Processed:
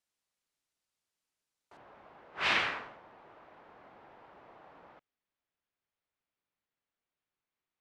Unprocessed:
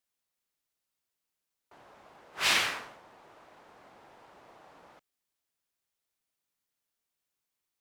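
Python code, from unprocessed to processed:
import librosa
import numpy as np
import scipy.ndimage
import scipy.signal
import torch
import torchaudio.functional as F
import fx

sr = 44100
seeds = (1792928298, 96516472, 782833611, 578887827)

y = fx.lowpass(x, sr, hz=fx.steps((0.0, 9800.0), (1.77, 2700.0)), slope=12)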